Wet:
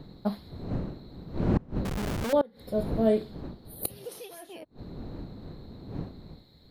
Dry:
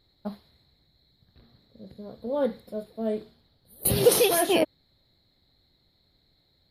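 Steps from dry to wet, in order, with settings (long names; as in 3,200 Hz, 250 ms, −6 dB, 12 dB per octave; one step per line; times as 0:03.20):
wind on the microphone 240 Hz −39 dBFS
0:01.85–0:02.33: comparator with hysteresis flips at −45 dBFS
gate with flip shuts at −18 dBFS, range −28 dB
level +5.5 dB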